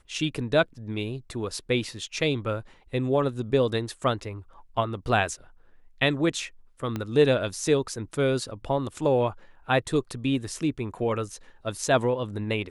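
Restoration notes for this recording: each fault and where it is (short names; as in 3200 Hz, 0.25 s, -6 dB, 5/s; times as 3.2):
6.96 pop -17 dBFS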